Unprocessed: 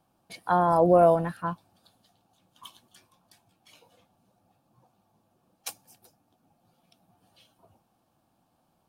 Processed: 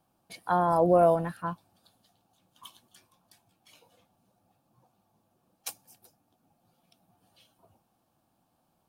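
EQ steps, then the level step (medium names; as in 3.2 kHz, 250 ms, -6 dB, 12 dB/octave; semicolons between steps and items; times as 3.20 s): treble shelf 9.2 kHz +4.5 dB; -2.5 dB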